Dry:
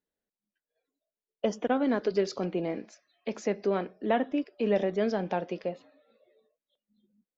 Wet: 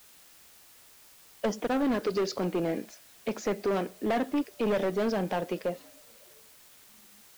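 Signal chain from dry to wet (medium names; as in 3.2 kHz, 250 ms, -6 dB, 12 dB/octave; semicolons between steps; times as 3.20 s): in parallel at -7.5 dB: word length cut 8-bit, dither triangular; on the sum: overload inside the chain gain 23.5 dB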